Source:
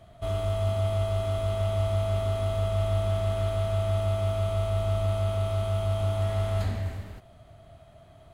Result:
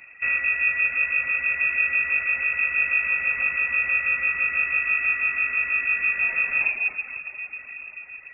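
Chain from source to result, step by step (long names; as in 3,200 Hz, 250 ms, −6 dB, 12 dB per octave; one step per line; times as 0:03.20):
feedback delay with all-pass diffusion 616 ms, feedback 52%, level −12 dB
reverb reduction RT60 0.9 s
voice inversion scrambler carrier 2,600 Hz
level +5.5 dB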